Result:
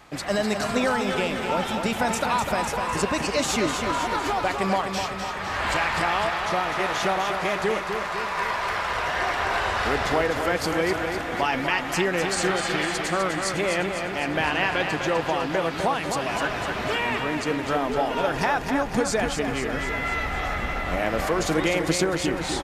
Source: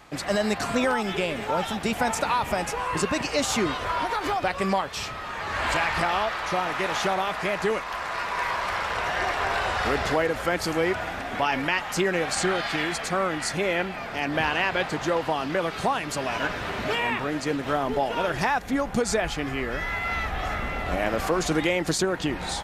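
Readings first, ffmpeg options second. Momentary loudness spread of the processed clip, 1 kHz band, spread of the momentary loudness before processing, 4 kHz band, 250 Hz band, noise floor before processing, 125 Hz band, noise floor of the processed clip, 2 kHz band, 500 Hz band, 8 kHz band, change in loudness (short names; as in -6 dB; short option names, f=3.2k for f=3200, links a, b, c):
4 LU, +1.5 dB, 5 LU, +1.0 dB, +1.5 dB, -34 dBFS, +1.5 dB, -30 dBFS, +1.5 dB, +1.5 dB, +1.5 dB, +1.5 dB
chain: -af "aecho=1:1:252|504|756|1008|1260|1512|1764|2016:0.473|0.284|0.17|0.102|0.0613|0.0368|0.0221|0.0132"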